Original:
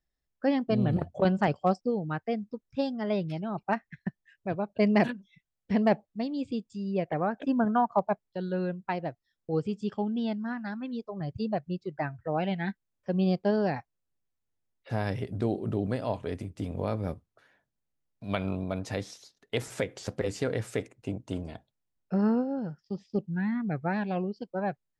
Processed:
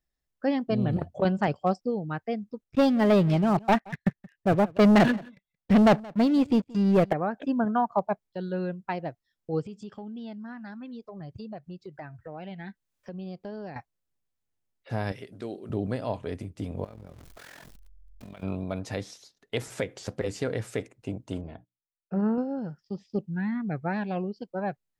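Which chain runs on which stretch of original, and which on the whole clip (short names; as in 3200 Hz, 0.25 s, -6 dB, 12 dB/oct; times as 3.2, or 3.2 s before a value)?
2.64–7.13 high shelf 4800 Hz -8 dB + sample leveller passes 3 + echo 0.175 s -23 dB
9.66–13.76 compressor 3:1, threshold -39 dBFS + mismatched tape noise reduction encoder only
15.12–15.7 HPF 620 Hz 6 dB/oct + bell 820 Hz -6.5 dB 0.89 oct
16.84–18.43 zero-crossing step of -39.5 dBFS + compressor 10:1, threshold -37 dBFS + AM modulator 43 Hz, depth 70%
21.41–22.38 notches 60/120/180/240/300/360 Hz + gate -59 dBFS, range -22 dB + air absorption 380 m
whole clip: dry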